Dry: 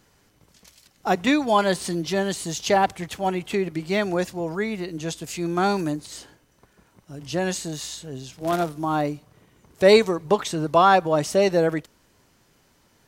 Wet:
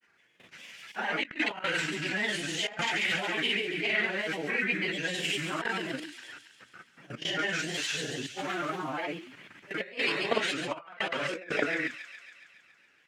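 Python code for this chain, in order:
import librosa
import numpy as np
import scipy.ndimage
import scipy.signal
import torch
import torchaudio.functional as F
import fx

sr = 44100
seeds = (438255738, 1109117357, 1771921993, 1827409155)

y = fx.phase_scramble(x, sr, seeds[0], window_ms=200)
y = fx.level_steps(y, sr, step_db=19)
y = scipy.signal.sosfilt(scipy.signal.butter(2, 180.0, 'highpass', fs=sr, output='sos'), y)
y = fx.band_shelf(y, sr, hz=2100.0, db=14.5, octaves=1.3)
y = fx.hum_notches(y, sr, base_hz=60, count=5)
y = fx.granulator(y, sr, seeds[1], grain_ms=100.0, per_s=20.0, spray_ms=37.0, spread_st=3)
y = fx.high_shelf(y, sr, hz=9900.0, db=-12.0)
y = fx.echo_wet_highpass(y, sr, ms=139, feedback_pct=67, hz=3900.0, wet_db=-6)
y = fx.over_compress(y, sr, threshold_db=-29.0, ratio=-0.5)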